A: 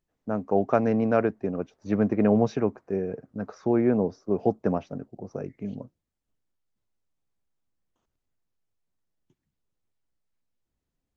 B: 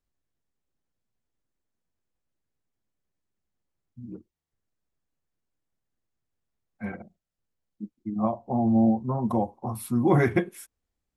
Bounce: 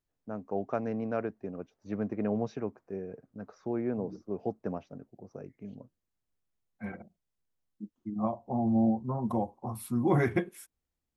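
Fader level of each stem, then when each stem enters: −10.0, −5.0 decibels; 0.00, 0.00 seconds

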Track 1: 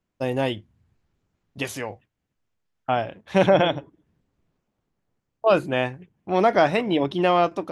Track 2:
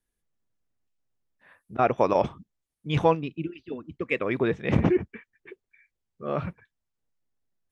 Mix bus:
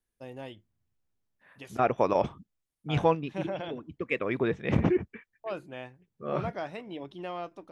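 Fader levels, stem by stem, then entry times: −18.0, −3.0 decibels; 0.00, 0.00 seconds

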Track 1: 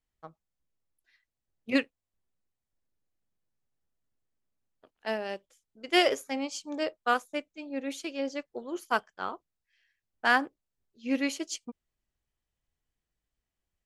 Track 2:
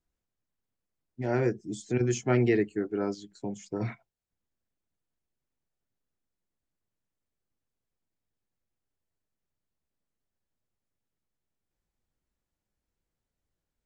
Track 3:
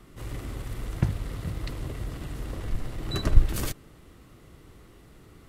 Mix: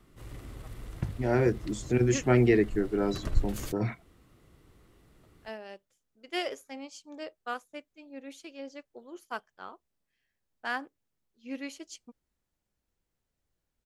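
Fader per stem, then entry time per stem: −9.5, +2.0, −8.5 decibels; 0.40, 0.00, 0.00 seconds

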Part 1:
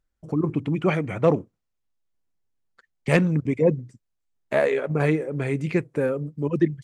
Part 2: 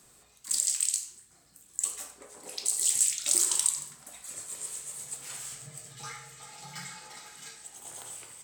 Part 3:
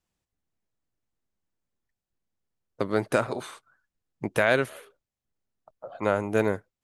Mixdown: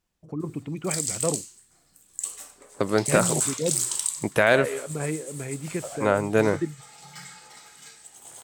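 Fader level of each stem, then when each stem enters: −8.0, −1.0, +3.0 decibels; 0.00, 0.40, 0.00 seconds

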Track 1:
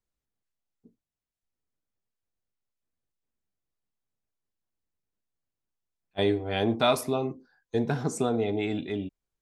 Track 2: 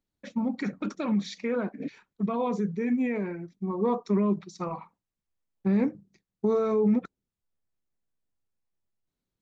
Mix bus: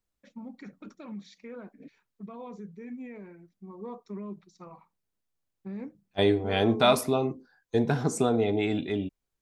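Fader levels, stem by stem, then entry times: +2.0, −14.0 decibels; 0.00, 0.00 seconds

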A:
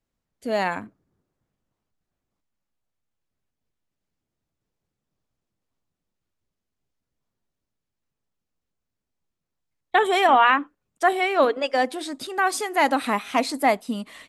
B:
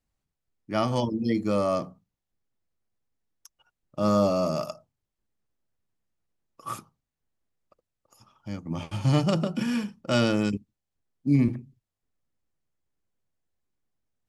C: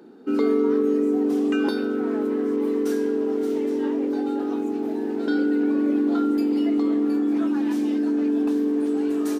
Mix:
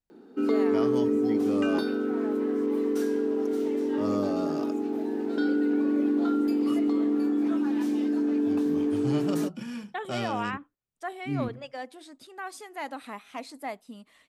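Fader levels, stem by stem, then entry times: −16.0, −9.5, −3.5 decibels; 0.00, 0.00, 0.10 seconds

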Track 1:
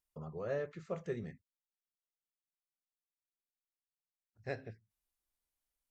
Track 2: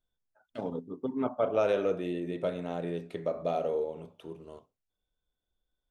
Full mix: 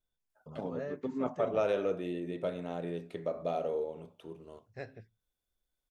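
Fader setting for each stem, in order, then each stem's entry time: −3.0, −3.0 decibels; 0.30, 0.00 seconds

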